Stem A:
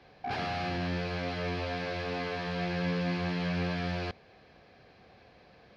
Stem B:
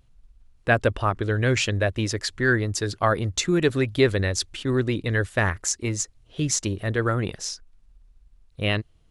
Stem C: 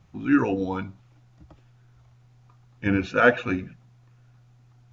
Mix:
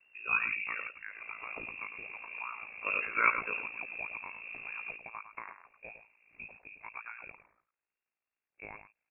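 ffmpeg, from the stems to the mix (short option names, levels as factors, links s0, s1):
-filter_complex "[0:a]asoftclip=type=tanh:threshold=0.0447,equalizer=f=370:w=2.2:g=15,adelay=850,volume=0.841,asplit=2[s0][s1];[s1]volume=0.0841[s2];[1:a]highpass=520,acompressor=threshold=0.0251:ratio=3,volume=0.708,asplit=3[s3][s4][s5];[s4]volume=0.335[s6];[2:a]equalizer=f=180:w=0.83:g=-12.5,volume=1.06,asplit=2[s7][s8];[s8]volume=0.316[s9];[s5]apad=whole_len=291545[s10];[s0][s10]sidechaincompress=threshold=0.00794:ratio=4:attack=27:release=1240[s11];[s2][s6][s9]amix=inputs=3:normalize=0,aecho=0:1:105:1[s12];[s11][s3][s7][s12]amix=inputs=4:normalize=0,equalizer=f=1000:t=o:w=2.6:g=-6.5,aeval=exprs='val(0)*sin(2*PI*28*n/s)':c=same,lowpass=f=2400:t=q:w=0.5098,lowpass=f=2400:t=q:w=0.6013,lowpass=f=2400:t=q:w=0.9,lowpass=f=2400:t=q:w=2.563,afreqshift=-2800"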